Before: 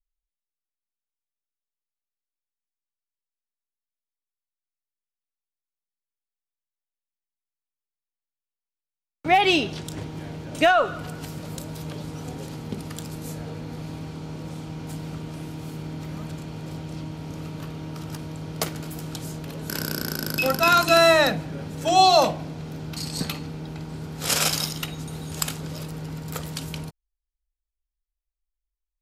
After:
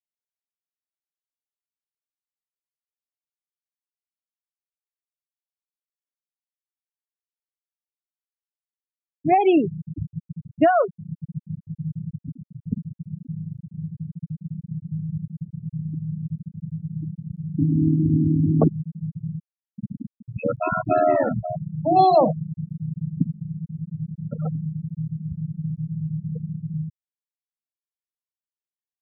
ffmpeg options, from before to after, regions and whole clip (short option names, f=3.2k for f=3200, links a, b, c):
-filter_complex "[0:a]asettb=1/sr,asplit=3[a][b][c];[a]atrim=end=17.584[d];[b]atrim=start=17.58:end=18.68,asetpts=PTS-STARTPTS,afade=t=in:d=0.004:c=qsin,afade=t=out:st=1.096:d=0.004:c=qsin,equalizer=f=280:t=o:w=0.76:g=8,bandreject=f=60:t=h:w=6,bandreject=f=120:t=h:w=6,bandreject=f=180:t=h:w=6,bandreject=f=240:t=h:w=6,bandreject=f=300:t=h:w=6,bandreject=f=360:t=h:w=6,bandreject=f=420:t=h:w=6,bandreject=f=480:t=h:w=6,bandreject=f=540:t=h:w=6,acontrast=40[e];[c]atrim=start=18.676[f];[d][e]acrossfade=d=0.004:c1=hsin:c2=qsin[g];[g][f]acrossfade=d=0.004:c1=qsin:c2=hsin,asettb=1/sr,asplit=3[h][i][j];[h]atrim=end=19.424[k];[i]atrim=start=19.42:end=21.56,asetpts=PTS-STARTPTS,afade=t=in:d=0.004:c=qsin,afade=t=out:st=2.136:d=0.004:c=qsin,lowpass=4.7k,aeval=exprs='val(0)*sin(2*PI*40*n/s)':c=same,aecho=1:1:531:0.335,atrim=end_sample=94374[l];[j]atrim=start=21.556[m];[k][l]acrossfade=d=0.004:c1=hsin:c2=qsin[n];[n][m]acrossfade=d=0.004:c1=qsin:c2=hsin,aemphasis=mode=reproduction:type=75fm,afftfilt=real='re*gte(hypot(re,im),0.2)':imag='im*gte(hypot(re,im),0.2)':win_size=1024:overlap=0.75,tiltshelf=f=790:g=9"